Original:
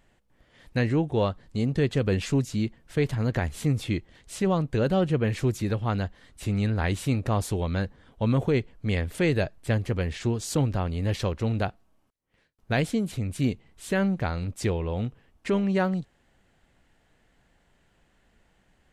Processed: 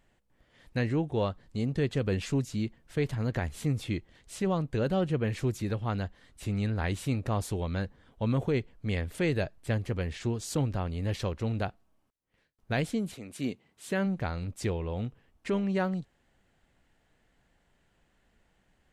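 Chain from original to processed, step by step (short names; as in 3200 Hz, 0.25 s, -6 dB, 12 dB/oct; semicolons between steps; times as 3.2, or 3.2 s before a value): 13.13–14.05 HPF 330 Hz -> 94 Hz 12 dB/oct; gain -4.5 dB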